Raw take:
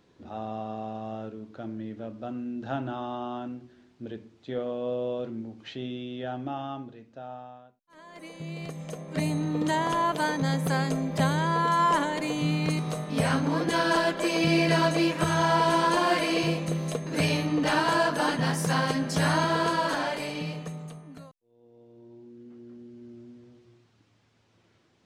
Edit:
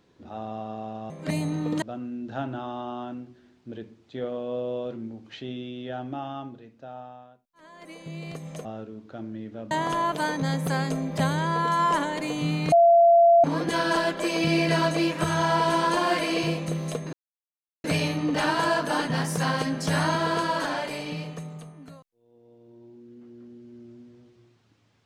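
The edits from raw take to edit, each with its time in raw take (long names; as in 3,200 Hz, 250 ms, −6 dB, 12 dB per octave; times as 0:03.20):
0:01.10–0:02.16: swap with 0:08.99–0:09.71
0:12.72–0:13.44: beep over 682 Hz −12.5 dBFS
0:17.13: splice in silence 0.71 s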